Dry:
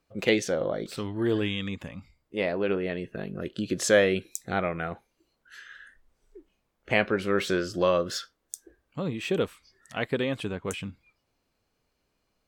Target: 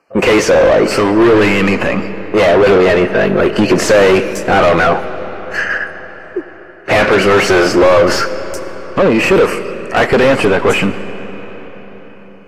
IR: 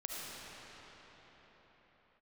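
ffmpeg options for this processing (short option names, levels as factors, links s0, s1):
-filter_complex "[0:a]deesser=0.45,agate=range=0.178:threshold=0.00447:ratio=16:detection=peak,asuperstop=centerf=3600:order=8:qfactor=2.7,lowshelf=f=150:g=-10.5,asplit=2[s0][s1];[s1]highpass=f=720:p=1,volume=70.8,asoftclip=type=tanh:threshold=0.422[s2];[s0][s2]amix=inputs=2:normalize=0,lowpass=f=1100:p=1,volume=0.501,asplit=2[s3][s4];[1:a]atrim=start_sample=2205[s5];[s4][s5]afir=irnorm=-1:irlink=0,volume=0.251[s6];[s3][s6]amix=inputs=2:normalize=0,acontrast=67,volume=1.12" -ar 32000 -c:a aac -b:a 48k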